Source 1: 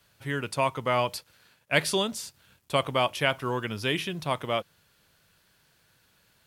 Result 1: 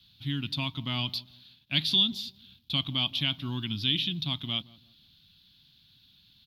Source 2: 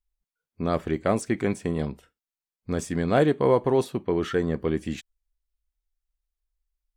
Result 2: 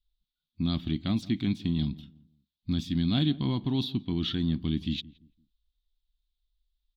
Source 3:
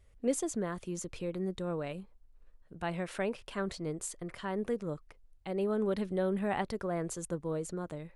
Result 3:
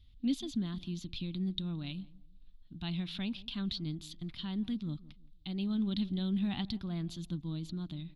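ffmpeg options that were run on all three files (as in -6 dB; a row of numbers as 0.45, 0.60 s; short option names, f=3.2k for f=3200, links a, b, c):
-filter_complex "[0:a]firequalizer=gain_entry='entry(280,0);entry(460,-30);entry(740,-16);entry(1800,-15);entry(3600,12);entry(5900,-11);entry(8500,-25);entry(12000,-9)':delay=0.05:min_phase=1,asplit=2[a][b];[b]alimiter=level_in=1.5dB:limit=-24dB:level=0:latency=1:release=391,volume=-1.5dB,volume=-2dB[c];[a][c]amix=inputs=2:normalize=0,asplit=2[d][e];[e]adelay=170,lowpass=f=870:p=1,volume=-18.5dB,asplit=2[f][g];[g]adelay=170,lowpass=f=870:p=1,volume=0.32,asplit=2[h][i];[i]adelay=170,lowpass=f=870:p=1,volume=0.32[j];[d][f][h][j]amix=inputs=4:normalize=0,volume=-2dB"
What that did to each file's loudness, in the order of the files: -0.5, -4.0, -1.5 LU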